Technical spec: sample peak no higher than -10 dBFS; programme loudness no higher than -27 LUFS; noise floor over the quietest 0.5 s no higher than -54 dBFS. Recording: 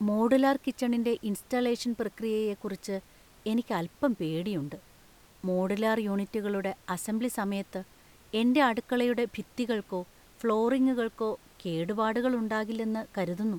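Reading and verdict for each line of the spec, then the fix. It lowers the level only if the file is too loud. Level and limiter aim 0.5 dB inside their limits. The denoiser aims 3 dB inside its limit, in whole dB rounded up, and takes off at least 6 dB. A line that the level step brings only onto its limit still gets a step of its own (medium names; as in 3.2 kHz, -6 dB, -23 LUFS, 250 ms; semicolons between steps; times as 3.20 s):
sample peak -12.5 dBFS: pass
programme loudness -30.0 LUFS: pass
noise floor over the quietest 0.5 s -57 dBFS: pass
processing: none needed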